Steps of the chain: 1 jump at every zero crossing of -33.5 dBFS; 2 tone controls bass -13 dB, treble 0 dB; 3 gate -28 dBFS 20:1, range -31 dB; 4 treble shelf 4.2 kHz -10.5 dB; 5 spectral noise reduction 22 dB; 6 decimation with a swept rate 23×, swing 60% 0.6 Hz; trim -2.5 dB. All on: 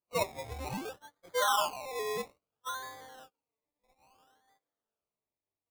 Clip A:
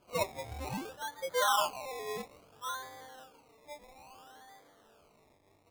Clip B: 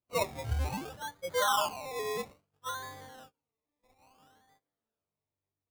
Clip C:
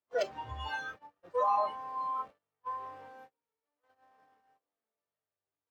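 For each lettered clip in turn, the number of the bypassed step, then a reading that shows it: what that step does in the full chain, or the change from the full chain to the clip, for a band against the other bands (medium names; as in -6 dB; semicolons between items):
3, momentary loudness spread change +8 LU; 2, 125 Hz band +8.5 dB; 6, 250 Hz band -9.5 dB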